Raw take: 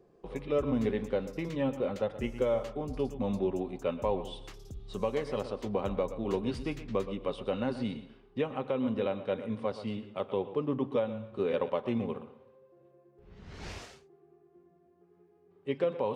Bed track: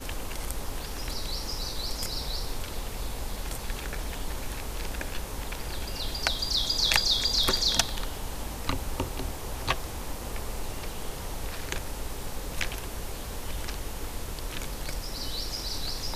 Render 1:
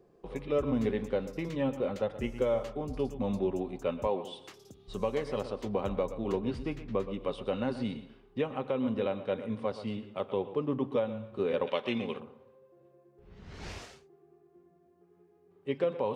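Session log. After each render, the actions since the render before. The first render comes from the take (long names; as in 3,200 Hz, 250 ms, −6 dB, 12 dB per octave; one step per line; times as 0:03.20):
0:04.07–0:04.88: high-pass filter 200 Hz
0:06.32–0:07.14: high-shelf EQ 3,900 Hz −9.5 dB
0:11.67–0:12.20: meter weighting curve D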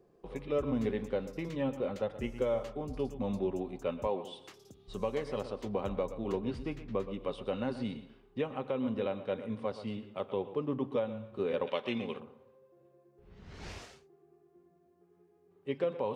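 level −2.5 dB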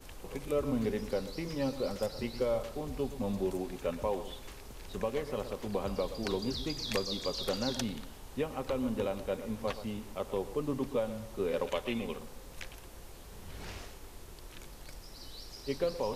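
mix in bed track −14 dB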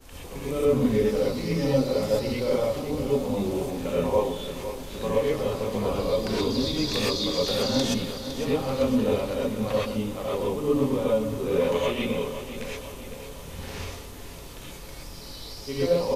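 on a send: repeating echo 509 ms, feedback 52%, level −11 dB
on the sum: reverb whose tail is shaped and stops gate 150 ms rising, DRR −7 dB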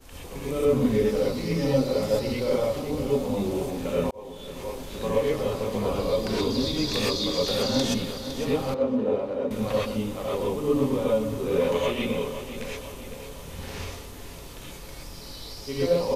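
0:04.11–0:04.75: fade in
0:08.74–0:09.51: resonant band-pass 490 Hz, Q 0.64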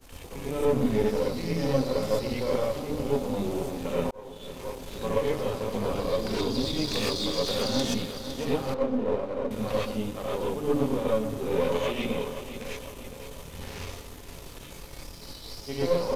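gain on one half-wave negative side −7 dB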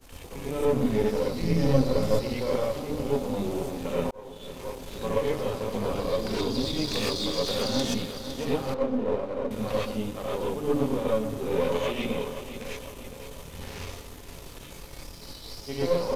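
0:01.41–0:02.21: low-shelf EQ 220 Hz +8.5 dB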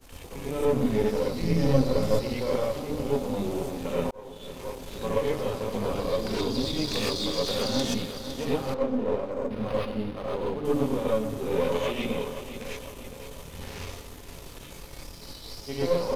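0:09.31–0:10.65: linearly interpolated sample-rate reduction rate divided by 6×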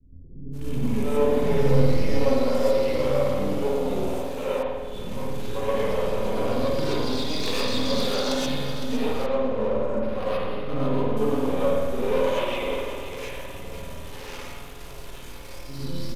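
multiband delay without the direct sound lows, highs 520 ms, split 270 Hz
spring reverb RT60 1.4 s, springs 50 ms, chirp 75 ms, DRR −2 dB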